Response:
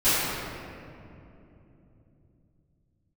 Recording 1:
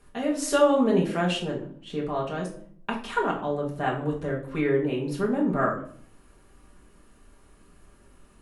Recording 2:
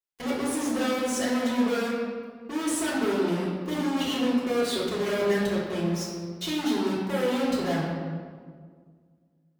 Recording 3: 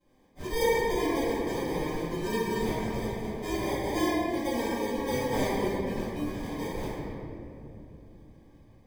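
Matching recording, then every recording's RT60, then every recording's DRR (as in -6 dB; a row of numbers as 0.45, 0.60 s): 3; 0.55, 1.8, 3.0 s; -3.5, -8.5, -19.5 dB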